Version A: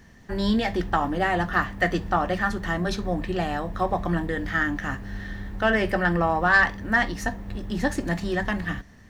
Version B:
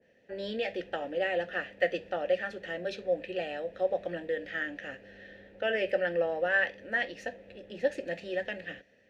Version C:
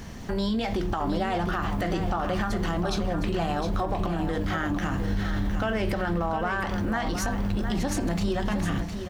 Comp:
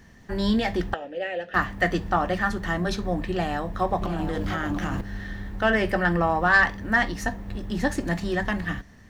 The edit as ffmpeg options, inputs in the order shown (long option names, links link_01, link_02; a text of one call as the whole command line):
ffmpeg -i take0.wav -i take1.wav -i take2.wav -filter_complex "[0:a]asplit=3[link_01][link_02][link_03];[link_01]atrim=end=0.942[link_04];[1:a]atrim=start=0.938:end=1.542[link_05];[link_02]atrim=start=1.538:end=4.022[link_06];[2:a]atrim=start=4.018:end=5.012[link_07];[link_03]atrim=start=5.008[link_08];[link_04][link_05]acrossfade=duration=0.004:curve1=hsin:curve2=hsin[link_09];[link_09][link_06]acrossfade=duration=0.004:curve1=hsin:curve2=hsin[link_10];[link_10][link_07]acrossfade=duration=0.004:curve1=hsin:curve2=hsin[link_11];[link_11][link_08]acrossfade=duration=0.004:curve1=hsin:curve2=hsin" out.wav